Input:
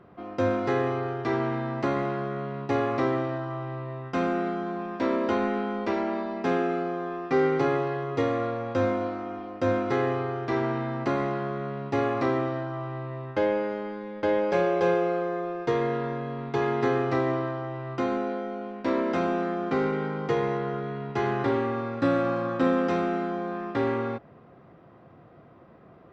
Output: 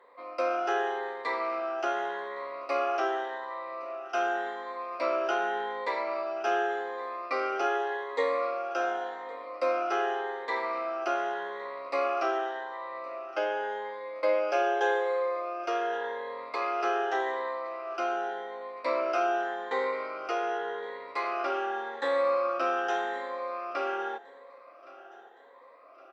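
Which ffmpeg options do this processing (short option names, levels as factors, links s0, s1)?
-af "afftfilt=real='re*pow(10,14/40*sin(2*PI*(1*log(max(b,1)*sr/1024/100)/log(2)-(0.86)*(pts-256)/sr)))':imag='im*pow(10,14/40*sin(2*PI*(1*log(max(b,1)*sr/1024/100)/log(2)-(0.86)*(pts-256)/sr)))':win_size=1024:overlap=0.75,highpass=f=500:w=0.5412,highpass=f=500:w=1.3066,aecho=1:1:1116|2232|3348|4464:0.0891|0.0437|0.0214|0.0105,volume=0.841"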